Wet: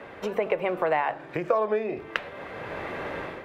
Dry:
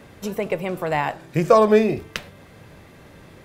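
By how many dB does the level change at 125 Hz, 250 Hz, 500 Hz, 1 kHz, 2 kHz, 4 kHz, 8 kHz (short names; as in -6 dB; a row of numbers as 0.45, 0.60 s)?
-13.0 dB, -11.5 dB, -7.0 dB, -5.0 dB, -1.5 dB, -5.5 dB, n/a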